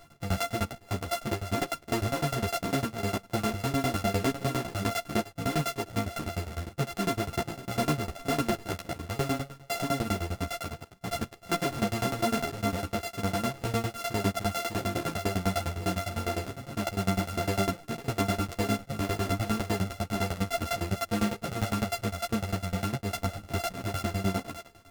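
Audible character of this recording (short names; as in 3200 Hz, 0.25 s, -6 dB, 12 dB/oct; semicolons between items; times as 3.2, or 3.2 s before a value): a buzz of ramps at a fixed pitch in blocks of 64 samples; tremolo saw down 9.9 Hz, depth 100%; a shimmering, thickened sound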